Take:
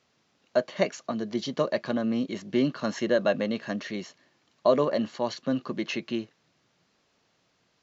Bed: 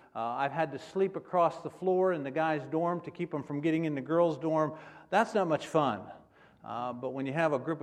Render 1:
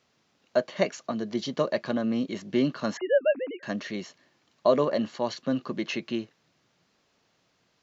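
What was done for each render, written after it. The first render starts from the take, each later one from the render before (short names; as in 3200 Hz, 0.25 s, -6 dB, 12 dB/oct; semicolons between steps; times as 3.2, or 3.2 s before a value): 2.97–3.63 sine-wave speech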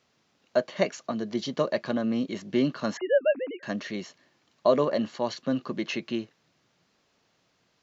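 nothing audible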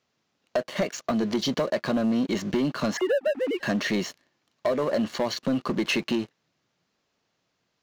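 compressor 10:1, threshold -30 dBFS, peak gain reduction 15 dB; sample leveller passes 3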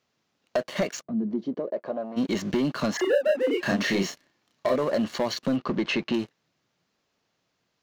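1.01–2.16 band-pass 160 Hz -> 830 Hz, Q 2; 2.96–4.76 doubler 31 ms -2.5 dB; 5.56–6.14 air absorption 120 m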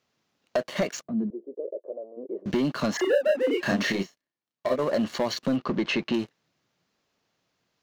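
1.3–2.46 Butterworth band-pass 450 Hz, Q 2.4; 3.92–4.79 upward expander 2.5:1, over -36 dBFS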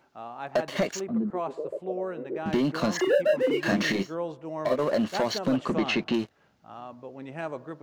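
add bed -6 dB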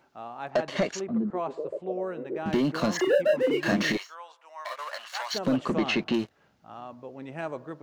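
0.5–1.95 LPF 7200 Hz; 3.97–5.34 HPF 940 Hz 24 dB/oct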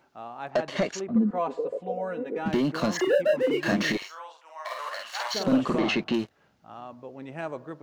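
1.15–2.48 comb 4.1 ms, depth 99%; 3.97–5.89 doubler 50 ms -2.5 dB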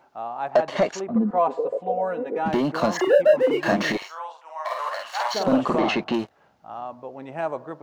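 bell 800 Hz +9.5 dB 1.4 oct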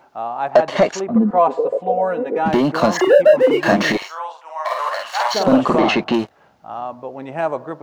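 gain +6.5 dB; limiter -2 dBFS, peak gain reduction 1.5 dB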